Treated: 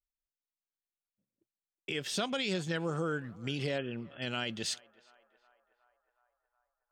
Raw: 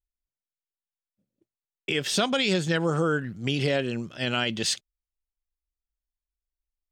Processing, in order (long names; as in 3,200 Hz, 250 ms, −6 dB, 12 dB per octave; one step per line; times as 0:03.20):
0:03.78–0:04.22: linear-phase brick-wall low-pass 3,500 Hz
on a send: feedback echo with a band-pass in the loop 367 ms, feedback 73%, band-pass 970 Hz, level −21.5 dB
on the sum: level −9 dB